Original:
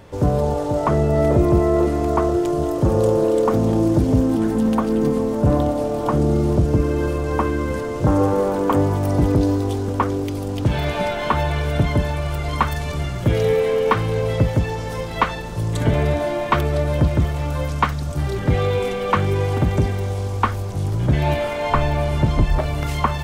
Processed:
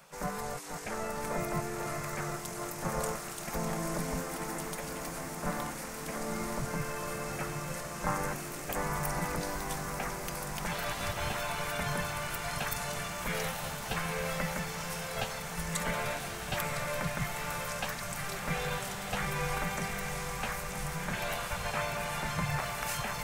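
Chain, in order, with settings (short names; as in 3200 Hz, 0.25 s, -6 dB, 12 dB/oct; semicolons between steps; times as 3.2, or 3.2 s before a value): EQ curve 110 Hz 0 dB, 290 Hz -28 dB, 2100 Hz +12 dB, 3200 Hz -1 dB, 5900 Hz +2 dB; spectral gate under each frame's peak -15 dB weak; bell 2500 Hz -11 dB 2.2 oct; on a send: diffused feedback echo 0.922 s, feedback 79%, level -8.5 dB; on the sum: gain +2 dB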